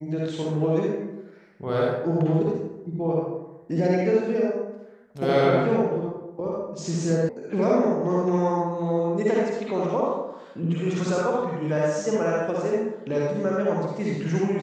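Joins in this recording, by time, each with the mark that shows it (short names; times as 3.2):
7.29 sound cut off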